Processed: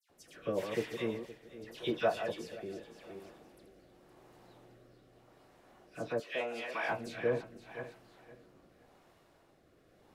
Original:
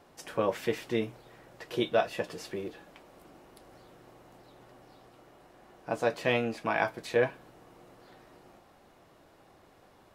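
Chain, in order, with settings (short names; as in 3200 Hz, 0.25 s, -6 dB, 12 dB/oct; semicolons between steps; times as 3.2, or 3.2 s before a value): regenerating reverse delay 0.258 s, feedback 48%, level -7.5 dB; 6.1–6.79 HPF 410 Hz 12 dB/oct; dispersion lows, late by 98 ms, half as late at 2400 Hz; rotary speaker horn 0.85 Hz; gain -4 dB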